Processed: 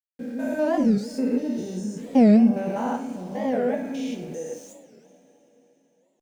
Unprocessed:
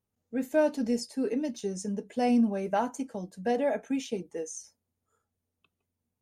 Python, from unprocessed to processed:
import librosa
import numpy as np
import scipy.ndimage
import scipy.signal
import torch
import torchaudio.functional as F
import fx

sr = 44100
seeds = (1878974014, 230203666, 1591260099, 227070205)

y = fx.spec_steps(x, sr, hold_ms=200)
y = fx.high_shelf(y, sr, hz=5500.0, db=-7.0)
y = np.where(np.abs(y) >= 10.0 ** (-54.5 / 20.0), y, 0.0)
y = fx.rev_double_slope(y, sr, seeds[0], early_s=0.44, late_s=4.4, knee_db=-21, drr_db=2.5)
y = fx.record_warp(y, sr, rpm=45.0, depth_cents=250.0)
y = y * 10.0 ** (5.0 / 20.0)